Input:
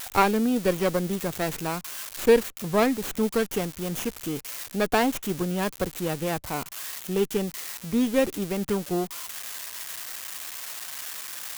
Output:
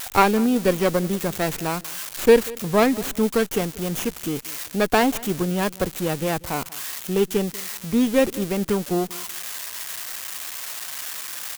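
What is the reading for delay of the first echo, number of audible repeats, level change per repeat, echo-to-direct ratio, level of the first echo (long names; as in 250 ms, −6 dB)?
189 ms, 2, −13.0 dB, −21.0 dB, −21.0 dB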